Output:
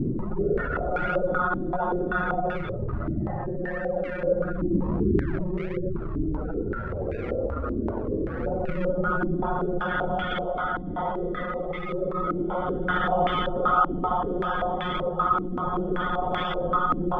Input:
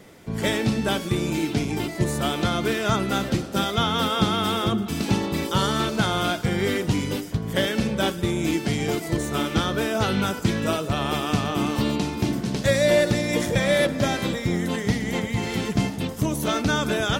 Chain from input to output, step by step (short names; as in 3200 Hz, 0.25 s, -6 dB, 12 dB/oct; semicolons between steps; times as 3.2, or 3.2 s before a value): Chebyshev high-pass 170 Hz, order 2; bell 240 Hz -5 dB 1.2 oct; overloaded stage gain 21.5 dB; limiter -33 dBFS, peak gain reduction 11.5 dB; monotone LPC vocoder at 8 kHz 180 Hz; Paulstretch 18×, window 0.05 s, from 3.07; spectral gate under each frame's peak -15 dB strong; in parallel at -7 dB: decimation with a swept rate 41×, swing 100% 1.5 Hz; on the sum: stepped low-pass 5.2 Hz 310–2200 Hz; gain +9 dB